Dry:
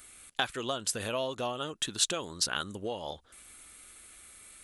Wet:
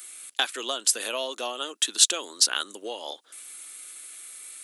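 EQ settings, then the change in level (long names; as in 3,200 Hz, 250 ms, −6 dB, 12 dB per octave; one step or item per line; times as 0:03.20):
Butterworth high-pass 270 Hz 36 dB per octave
high-shelf EQ 2,300 Hz +11 dB
0.0 dB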